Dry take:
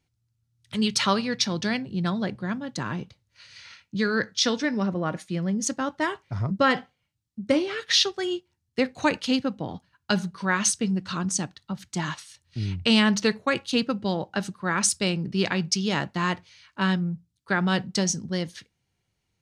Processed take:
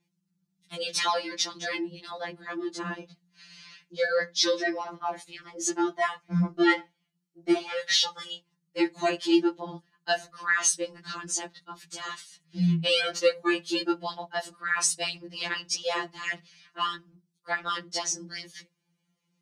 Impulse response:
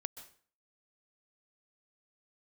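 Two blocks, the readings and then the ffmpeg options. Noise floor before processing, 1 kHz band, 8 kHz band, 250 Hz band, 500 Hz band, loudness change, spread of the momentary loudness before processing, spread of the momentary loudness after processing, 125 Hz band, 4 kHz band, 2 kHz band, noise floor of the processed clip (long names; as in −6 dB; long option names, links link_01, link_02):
−77 dBFS, −2.0 dB, −1.5 dB, −5.0 dB, −1.0 dB, −2.5 dB, 12 LU, 16 LU, −6.5 dB, −2.0 dB, −1.5 dB, −78 dBFS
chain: -af "afreqshift=74,afftfilt=real='re*2.83*eq(mod(b,8),0)':imag='im*2.83*eq(mod(b,8),0)':win_size=2048:overlap=0.75"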